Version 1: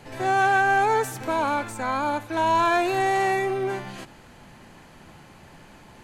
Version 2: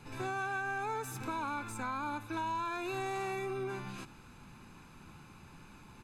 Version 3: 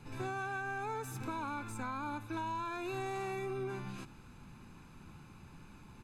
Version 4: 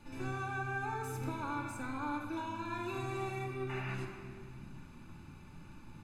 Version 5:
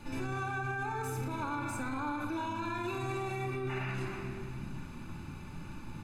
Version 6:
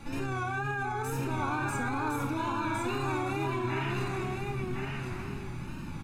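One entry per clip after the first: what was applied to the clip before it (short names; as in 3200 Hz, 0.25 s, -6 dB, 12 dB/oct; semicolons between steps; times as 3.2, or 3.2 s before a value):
comb 0.8 ms, depth 62%; compressor 6:1, threshold -26 dBFS, peak gain reduction 10 dB; gain -8 dB
low shelf 330 Hz +5.5 dB; gain -3.5 dB
painted sound noise, 3.69–3.95, 620–2900 Hz -44 dBFS; shoebox room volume 3300 m³, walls mixed, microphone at 2.5 m; gain -3.5 dB
limiter -36 dBFS, peak gain reduction 11 dB; gain +8 dB
wow and flutter 84 cents; echo 1.059 s -3.5 dB; gain +3 dB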